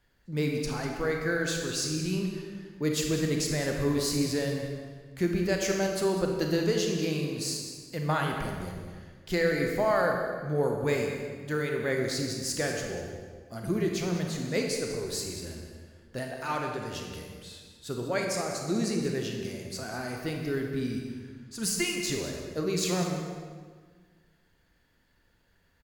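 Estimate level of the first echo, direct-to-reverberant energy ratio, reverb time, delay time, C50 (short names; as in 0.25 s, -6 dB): -13.0 dB, 1.0 dB, 1.6 s, 0.197 s, 2.0 dB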